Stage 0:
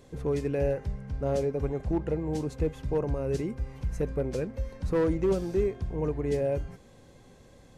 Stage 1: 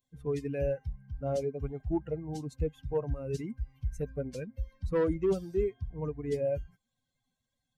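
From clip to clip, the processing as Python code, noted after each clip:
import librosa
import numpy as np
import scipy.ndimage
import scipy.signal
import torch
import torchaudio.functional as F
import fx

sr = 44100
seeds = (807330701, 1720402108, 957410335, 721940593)

y = fx.bin_expand(x, sr, power=2.0)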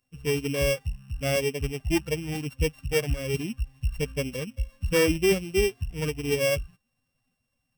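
y = np.r_[np.sort(x[:len(x) // 16 * 16].reshape(-1, 16), axis=1).ravel(), x[len(x) // 16 * 16:]]
y = y * librosa.db_to_amplitude(6.0)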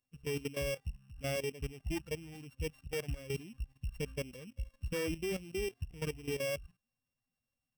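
y = fx.level_steps(x, sr, step_db=14)
y = y * librosa.db_to_amplitude(-6.5)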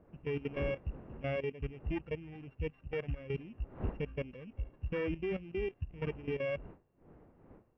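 y = fx.dmg_wind(x, sr, seeds[0], corner_hz=400.0, level_db=-54.0)
y = scipy.signal.sosfilt(scipy.signal.butter(4, 2500.0, 'lowpass', fs=sr, output='sos'), y)
y = y * librosa.db_to_amplitude(1.0)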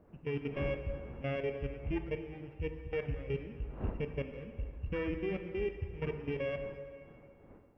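y = fx.rev_plate(x, sr, seeds[1], rt60_s=2.2, hf_ratio=0.8, predelay_ms=0, drr_db=6.5)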